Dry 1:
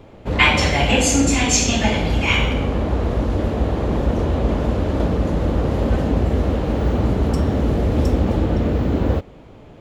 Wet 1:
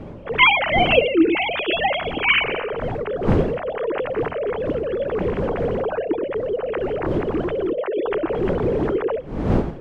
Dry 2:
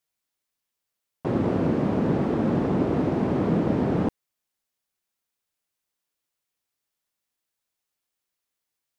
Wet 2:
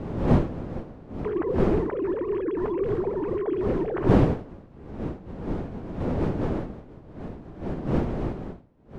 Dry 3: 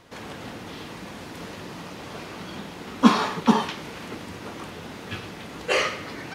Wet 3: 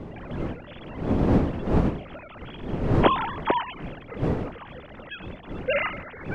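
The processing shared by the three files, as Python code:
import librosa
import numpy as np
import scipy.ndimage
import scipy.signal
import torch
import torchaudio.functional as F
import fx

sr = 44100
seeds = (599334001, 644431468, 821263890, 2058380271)

y = fx.sine_speech(x, sr)
y = fx.dmg_wind(y, sr, seeds[0], corner_hz=320.0, level_db=-24.0)
y = F.gain(torch.from_numpy(y), -4.0).numpy()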